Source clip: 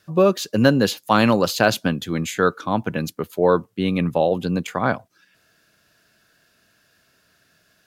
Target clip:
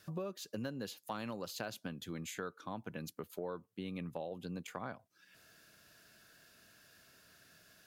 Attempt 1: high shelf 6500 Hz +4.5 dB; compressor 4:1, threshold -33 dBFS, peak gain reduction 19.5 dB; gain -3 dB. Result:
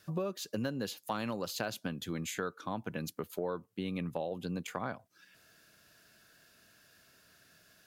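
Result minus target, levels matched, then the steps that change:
compressor: peak gain reduction -5.5 dB
change: compressor 4:1, threshold -40.5 dBFS, peak gain reduction 25 dB

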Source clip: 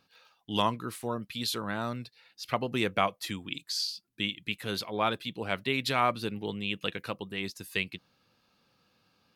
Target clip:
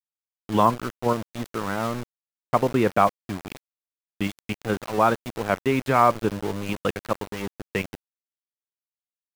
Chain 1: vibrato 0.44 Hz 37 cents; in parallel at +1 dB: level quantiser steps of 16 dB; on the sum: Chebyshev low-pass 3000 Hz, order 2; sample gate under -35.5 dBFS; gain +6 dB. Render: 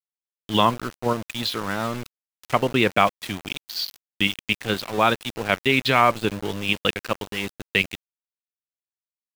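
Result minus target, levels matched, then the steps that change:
4000 Hz band +12.0 dB
change: Chebyshev low-pass 1200 Hz, order 2

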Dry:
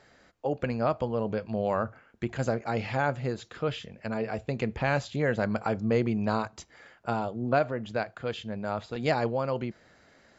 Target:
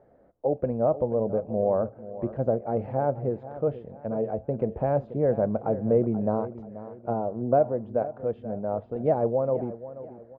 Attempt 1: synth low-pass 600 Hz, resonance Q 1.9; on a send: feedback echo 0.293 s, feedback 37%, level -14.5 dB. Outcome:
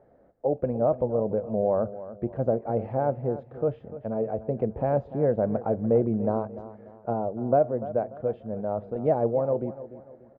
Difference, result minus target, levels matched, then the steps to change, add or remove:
echo 0.19 s early
change: feedback echo 0.483 s, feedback 37%, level -14.5 dB

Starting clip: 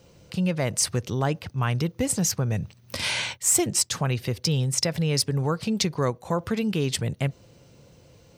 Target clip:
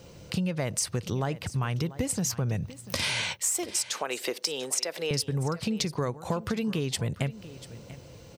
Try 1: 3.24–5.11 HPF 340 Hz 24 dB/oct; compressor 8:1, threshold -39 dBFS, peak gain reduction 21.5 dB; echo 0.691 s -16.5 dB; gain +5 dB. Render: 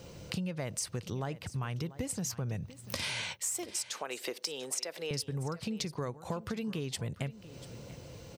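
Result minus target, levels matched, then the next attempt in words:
compressor: peak gain reduction +7 dB
3.24–5.11 HPF 340 Hz 24 dB/oct; compressor 8:1, threshold -31 dBFS, peak gain reduction 14.5 dB; echo 0.691 s -16.5 dB; gain +5 dB

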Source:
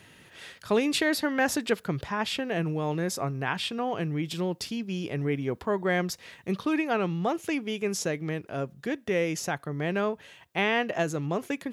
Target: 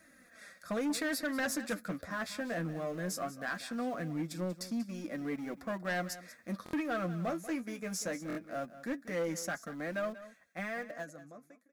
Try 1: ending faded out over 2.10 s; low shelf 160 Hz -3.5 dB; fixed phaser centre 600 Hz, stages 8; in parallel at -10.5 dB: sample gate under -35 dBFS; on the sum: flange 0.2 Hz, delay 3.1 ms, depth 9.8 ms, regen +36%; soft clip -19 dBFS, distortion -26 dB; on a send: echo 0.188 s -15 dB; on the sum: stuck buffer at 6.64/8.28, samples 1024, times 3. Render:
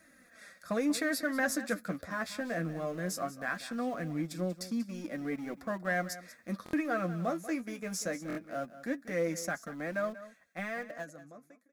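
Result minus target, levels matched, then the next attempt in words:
soft clip: distortion -13 dB
ending faded out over 2.10 s; low shelf 160 Hz -3.5 dB; fixed phaser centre 600 Hz, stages 8; in parallel at -10.5 dB: sample gate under -35 dBFS; on the sum: flange 0.2 Hz, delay 3.1 ms, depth 9.8 ms, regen +36%; soft clip -28.5 dBFS, distortion -13 dB; on a send: echo 0.188 s -15 dB; on the sum: stuck buffer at 6.64/8.28, samples 1024, times 3

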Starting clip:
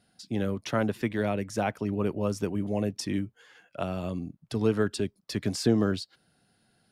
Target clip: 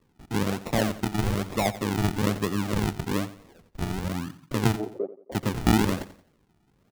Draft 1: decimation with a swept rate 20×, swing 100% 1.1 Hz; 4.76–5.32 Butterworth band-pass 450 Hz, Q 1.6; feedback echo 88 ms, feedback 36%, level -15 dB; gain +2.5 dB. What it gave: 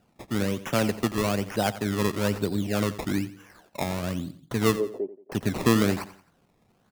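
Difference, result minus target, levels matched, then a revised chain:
decimation with a swept rate: distortion -11 dB
decimation with a swept rate 56×, swing 100% 1.1 Hz; 4.76–5.32 Butterworth band-pass 450 Hz, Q 1.6; feedback echo 88 ms, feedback 36%, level -15 dB; gain +2.5 dB

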